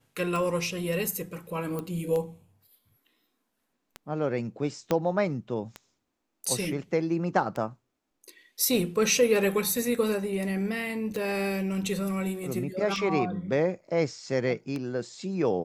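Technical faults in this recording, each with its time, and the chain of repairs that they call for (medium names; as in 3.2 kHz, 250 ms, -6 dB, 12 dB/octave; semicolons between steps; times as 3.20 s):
tick 33 1/3 rpm
1.79 s: pop -20 dBFS
4.91 s: pop -12 dBFS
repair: de-click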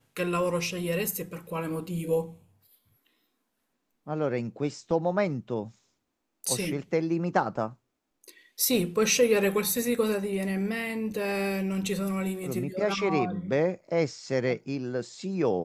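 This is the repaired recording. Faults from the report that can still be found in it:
1.79 s: pop
4.91 s: pop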